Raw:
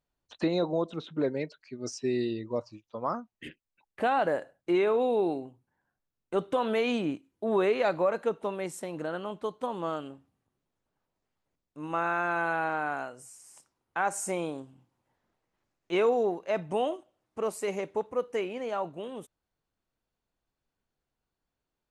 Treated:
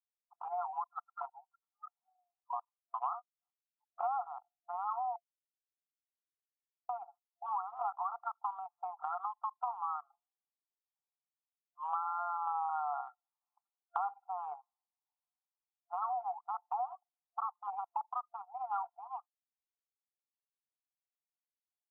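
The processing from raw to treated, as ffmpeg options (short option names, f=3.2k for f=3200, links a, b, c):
-filter_complex "[0:a]asettb=1/sr,asplit=3[a][b][c];[a]atrim=end=12.474[d];[b]atrim=start=12.47:end=13.01,asetpts=PTS-STARTPTS,afade=t=in:d=0.004:c=qsin,afade=t=out:st=0.536:d=0.004:c=qsin,acontrast=38[e];[c]atrim=start=13.006[f];[d][e]acrossfade=d=0.004:c1=hsin:c2=qsin[g];[g][f]acrossfade=d=0.004:c1=qsin:c2=hsin,asplit=3[h][i][j];[h]atrim=end=5.16,asetpts=PTS-STARTPTS,afade=t=out:st=5.156:d=0.004:c=hsin[k];[i]atrim=start=5.16:end=6.89,asetpts=PTS-STARTPTS,volume=0[l];[j]atrim=start=6.89,asetpts=PTS-STARTPTS,afade=t=in:d=0.004:c=hsin[m];[k][l][m]concat=n=3:v=0:a=1,afftfilt=real='re*between(b*sr/4096,690,1400)':imag='im*between(b*sr/4096,690,1400)':win_size=4096:overlap=0.75,anlmdn=0.0158,acompressor=threshold=-48dB:ratio=6,volume=13dB"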